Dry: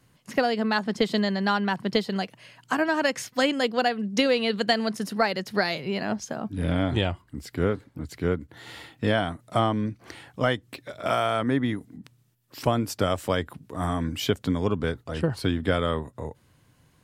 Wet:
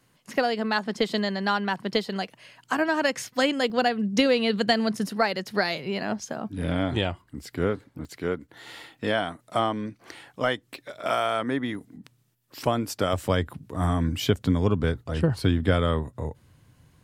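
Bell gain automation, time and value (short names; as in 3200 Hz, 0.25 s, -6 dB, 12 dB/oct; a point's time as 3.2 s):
bell 63 Hz 2.9 oct
-8 dB
from 2.76 s -1 dB
from 3.7 s +8 dB
from 5.09 s -3.5 dB
from 8.05 s -12 dB
from 11.75 s -5 dB
from 13.13 s +6.5 dB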